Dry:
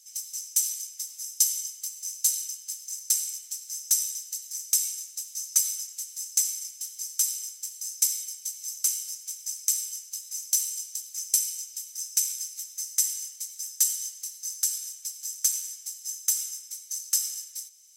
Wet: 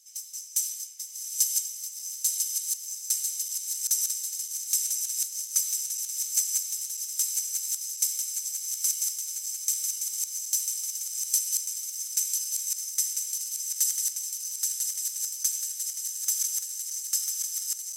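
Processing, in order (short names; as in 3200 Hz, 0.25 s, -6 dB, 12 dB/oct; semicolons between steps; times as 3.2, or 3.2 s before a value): regenerating reverse delay 0.498 s, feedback 83%, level -4 dB; gain -3 dB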